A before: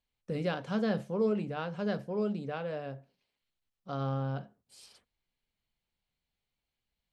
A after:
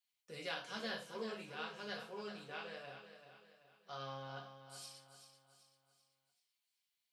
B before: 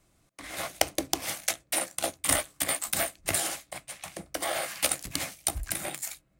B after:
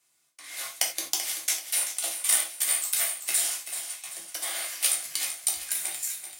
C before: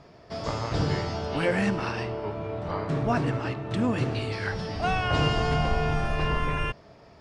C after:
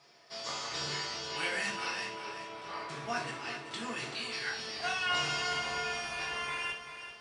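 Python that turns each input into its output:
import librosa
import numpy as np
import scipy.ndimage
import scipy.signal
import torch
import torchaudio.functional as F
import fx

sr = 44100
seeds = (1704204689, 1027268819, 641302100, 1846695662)

p1 = fx.highpass(x, sr, hz=1200.0, slope=6)
p2 = fx.high_shelf(p1, sr, hz=2300.0, db=9.5)
p3 = p2 + fx.echo_feedback(p2, sr, ms=385, feedback_pct=43, wet_db=-10.0, dry=0)
p4 = fx.rev_gated(p3, sr, seeds[0], gate_ms=120, shape='falling', drr_db=-1.5)
y = p4 * librosa.db_to_amplitude(-9.0)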